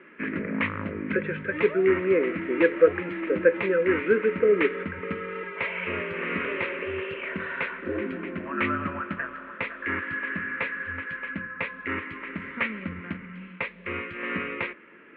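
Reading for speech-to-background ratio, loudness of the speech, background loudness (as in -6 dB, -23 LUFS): 6.5 dB, -24.5 LUFS, -31.0 LUFS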